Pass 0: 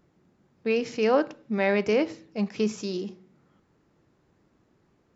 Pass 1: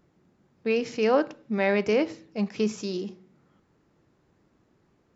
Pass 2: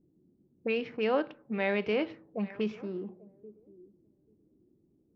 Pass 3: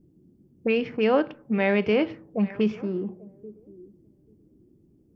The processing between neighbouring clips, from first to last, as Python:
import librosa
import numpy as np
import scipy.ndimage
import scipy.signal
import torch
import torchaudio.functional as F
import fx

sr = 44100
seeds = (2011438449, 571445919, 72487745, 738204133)

y1 = x
y2 = fx.air_absorb(y1, sr, metres=140.0)
y2 = fx.echo_thinned(y2, sr, ms=838, feedback_pct=23, hz=330.0, wet_db=-20)
y2 = fx.envelope_lowpass(y2, sr, base_hz=310.0, top_hz=3400.0, q=2.3, full_db=-23.0, direction='up')
y2 = y2 * librosa.db_to_amplitude(-6.0)
y3 = fx.low_shelf(y2, sr, hz=200.0, db=8.5)
y3 = fx.notch(y3, sr, hz=3900.0, q=8.5)
y3 = y3 * librosa.db_to_amplitude(5.5)